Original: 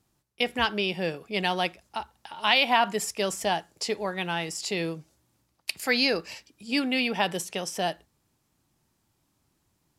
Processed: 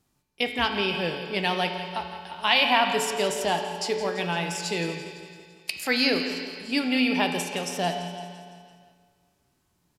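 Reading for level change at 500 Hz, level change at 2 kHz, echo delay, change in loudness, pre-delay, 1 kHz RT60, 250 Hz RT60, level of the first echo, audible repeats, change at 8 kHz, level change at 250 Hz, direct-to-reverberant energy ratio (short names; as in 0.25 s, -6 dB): +2.0 dB, +1.5 dB, 0.169 s, +1.5 dB, 5 ms, 2.0 s, 2.1 s, -13.0 dB, 5, +0.5 dB, +3.0 dB, 3.0 dB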